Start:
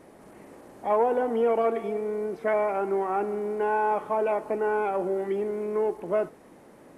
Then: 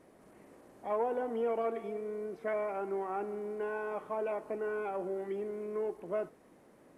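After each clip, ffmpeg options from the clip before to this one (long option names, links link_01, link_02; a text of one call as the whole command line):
ffmpeg -i in.wav -af "bandreject=frequency=850:width=18,volume=-9dB" out.wav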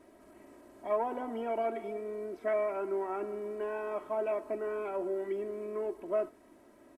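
ffmpeg -i in.wav -af "aecho=1:1:3.1:0.68" out.wav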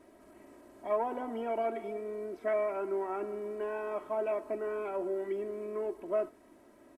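ffmpeg -i in.wav -af anull out.wav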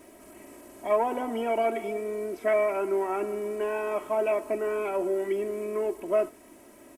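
ffmpeg -i in.wav -af "aexciter=amount=1.8:drive=5.3:freq=2200,volume=6.5dB" out.wav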